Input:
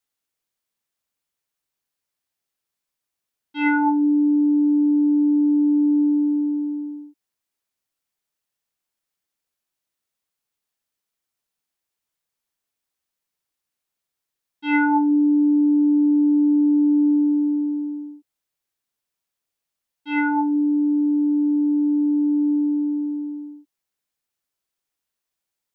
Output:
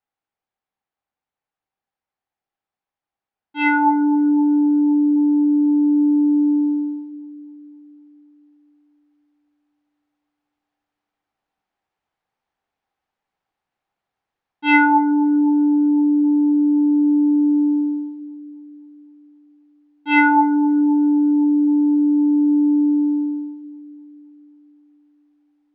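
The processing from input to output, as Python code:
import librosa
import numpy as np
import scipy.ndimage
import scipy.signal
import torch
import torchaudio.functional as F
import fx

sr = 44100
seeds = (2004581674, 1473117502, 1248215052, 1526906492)

p1 = fx.peak_eq(x, sr, hz=790.0, db=11.0, octaves=0.21)
p2 = fx.env_lowpass(p1, sr, base_hz=1400.0, full_db=-15.5)
p3 = fx.high_shelf(p2, sr, hz=2100.0, db=11.0)
p4 = p3 + fx.echo_bbd(p3, sr, ms=258, stages=2048, feedback_pct=64, wet_db=-14.5, dry=0)
p5 = fx.rider(p4, sr, range_db=5, speed_s=0.5)
y = p5 * 10.0 ** (2.0 / 20.0)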